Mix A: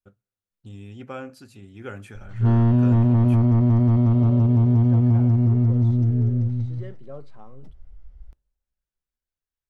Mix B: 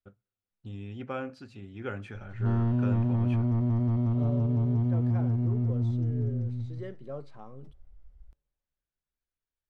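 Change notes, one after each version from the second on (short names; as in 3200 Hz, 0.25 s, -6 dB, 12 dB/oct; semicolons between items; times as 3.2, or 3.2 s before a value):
first voice: add LPF 4100 Hz 12 dB/oct; background -9.0 dB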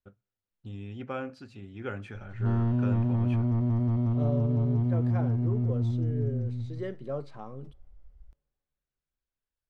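second voice +5.0 dB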